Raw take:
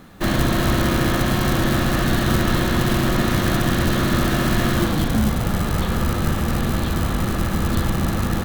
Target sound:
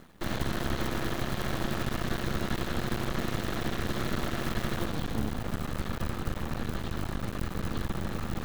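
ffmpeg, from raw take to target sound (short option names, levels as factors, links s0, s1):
-af "areverse,acompressor=mode=upward:threshold=0.0794:ratio=2.5,areverse,aeval=exprs='max(val(0),0)':c=same,volume=0.376"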